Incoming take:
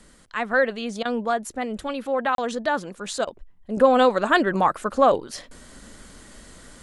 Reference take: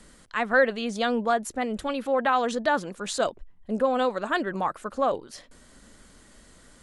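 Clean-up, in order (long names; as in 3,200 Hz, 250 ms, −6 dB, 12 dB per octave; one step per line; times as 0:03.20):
repair the gap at 0:02.35, 32 ms
repair the gap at 0:01.03/0:03.25, 21 ms
level correction −7.5 dB, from 0:03.77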